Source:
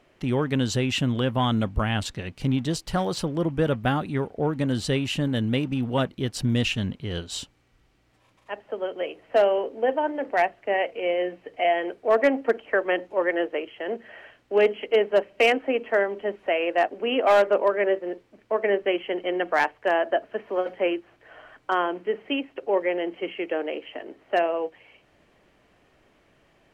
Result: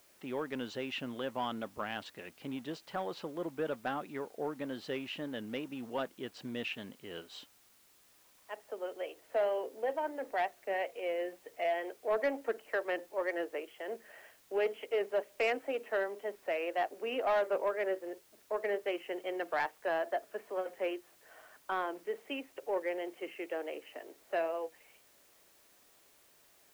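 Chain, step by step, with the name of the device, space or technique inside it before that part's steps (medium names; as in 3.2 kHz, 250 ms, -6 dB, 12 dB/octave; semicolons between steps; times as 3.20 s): tape answering machine (band-pass 340–3000 Hz; saturation -14 dBFS, distortion -19 dB; wow and flutter; white noise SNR 28 dB); trim -9 dB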